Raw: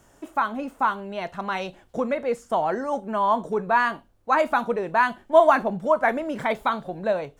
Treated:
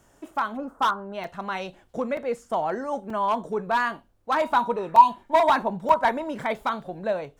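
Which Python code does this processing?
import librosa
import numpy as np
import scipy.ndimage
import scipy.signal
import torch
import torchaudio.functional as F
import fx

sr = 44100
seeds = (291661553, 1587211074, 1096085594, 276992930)

y = fx.high_shelf_res(x, sr, hz=1800.0, db=-11.0, q=3.0, at=(0.56, 1.13), fade=0.02)
y = fx.spec_repair(y, sr, seeds[0], start_s=4.79, length_s=0.46, low_hz=1200.0, high_hz=2400.0, source='both')
y = np.clip(10.0 ** (14.5 / 20.0) * y, -1.0, 1.0) / 10.0 ** (14.5 / 20.0)
y = fx.small_body(y, sr, hz=(950.0, 3800.0), ring_ms=45, db=14, at=(4.41, 6.34))
y = fx.buffer_crackle(y, sr, first_s=0.31, period_s=0.93, block=128, kind='zero')
y = y * 10.0 ** (-2.5 / 20.0)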